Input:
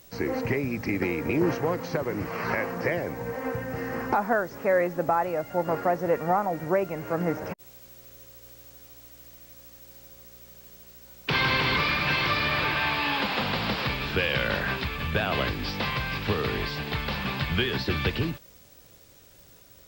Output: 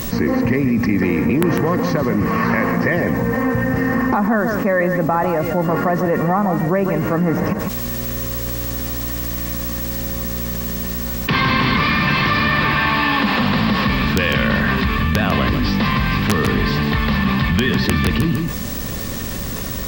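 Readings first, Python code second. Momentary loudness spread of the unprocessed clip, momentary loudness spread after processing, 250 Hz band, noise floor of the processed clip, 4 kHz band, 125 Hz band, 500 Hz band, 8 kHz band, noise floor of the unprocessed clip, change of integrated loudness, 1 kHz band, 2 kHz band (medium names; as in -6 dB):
22 LU, 7 LU, +14.5 dB, -25 dBFS, +6.0 dB, +13.0 dB, +7.0 dB, +16.0 dB, -53 dBFS, +9.0 dB, +8.5 dB, +8.5 dB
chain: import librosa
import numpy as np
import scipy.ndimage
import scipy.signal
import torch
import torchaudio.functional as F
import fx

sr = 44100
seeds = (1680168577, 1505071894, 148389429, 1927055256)

p1 = fx.low_shelf(x, sr, hz=120.0, db=9.0)
p2 = fx.small_body(p1, sr, hz=(220.0, 1100.0, 1800.0), ring_ms=45, db=12)
p3 = (np.mod(10.0 ** (8.0 / 20.0) * p2 + 1.0, 2.0) - 1.0) / 10.0 ** (8.0 / 20.0)
p4 = p3 + fx.echo_single(p3, sr, ms=150, db=-11.5, dry=0)
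y = fx.env_flatten(p4, sr, amount_pct=70)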